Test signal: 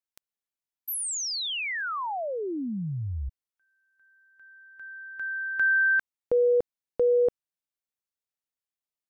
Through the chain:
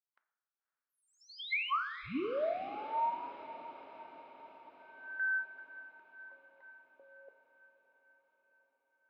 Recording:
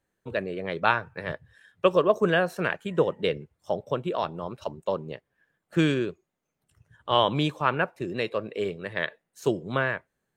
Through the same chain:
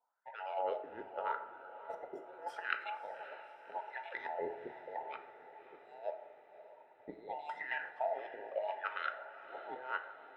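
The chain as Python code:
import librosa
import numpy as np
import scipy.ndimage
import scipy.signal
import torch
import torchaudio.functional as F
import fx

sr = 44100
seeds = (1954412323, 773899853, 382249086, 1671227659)

y = fx.band_invert(x, sr, width_hz=1000)
y = fx.env_lowpass(y, sr, base_hz=950.0, full_db=-18.5)
y = fx.peak_eq(y, sr, hz=6600.0, db=-8.5, octaves=0.36)
y = fx.over_compress(y, sr, threshold_db=-31.0, ratio=-0.5)
y = fx.wah_lfo(y, sr, hz=0.81, low_hz=300.0, high_hz=1800.0, q=2.9)
y = scipy.signal.lfilter([1.0, -0.9], [1.0], y)
y = fx.echo_diffused(y, sr, ms=572, feedback_pct=61, wet_db=-14)
y = fx.rev_plate(y, sr, seeds[0], rt60_s=0.99, hf_ratio=0.5, predelay_ms=0, drr_db=7.5)
y = F.gain(torch.from_numpy(y), 13.0).numpy()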